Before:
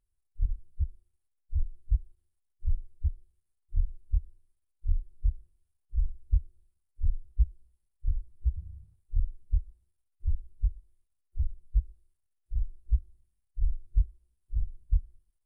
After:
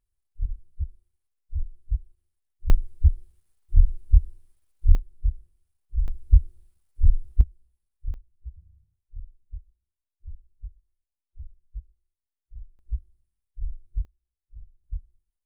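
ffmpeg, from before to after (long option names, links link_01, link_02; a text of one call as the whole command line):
ffmpeg -i in.wav -af "asetnsamples=nb_out_samples=441:pad=0,asendcmd='2.7 volume volume 11.5dB;4.95 volume volume 3dB;6.08 volume volume 10dB;7.41 volume volume -2dB;8.14 volume volume -11.5dB;12.79 volume volume -4dB;14.05 volume volume -14.5dB;14.84 volume volume -7.5dB',volume=0dB" out.wav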